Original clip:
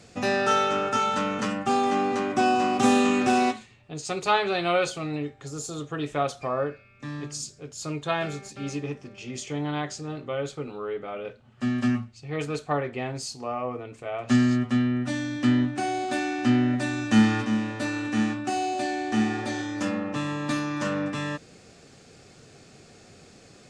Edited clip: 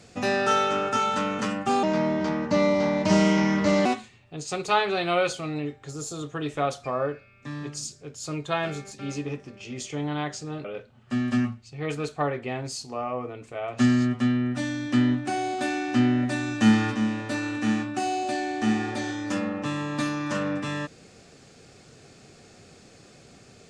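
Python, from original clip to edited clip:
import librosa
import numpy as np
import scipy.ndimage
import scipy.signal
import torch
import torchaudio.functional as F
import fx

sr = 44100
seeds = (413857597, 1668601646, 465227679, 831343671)

y = fx.edit(x, sr, fx.speed_span(start_s=1.83, length_s=1.6, speed=0.79),
    fx.cut(start_s=10.22, length_s=0.93), tone=tone)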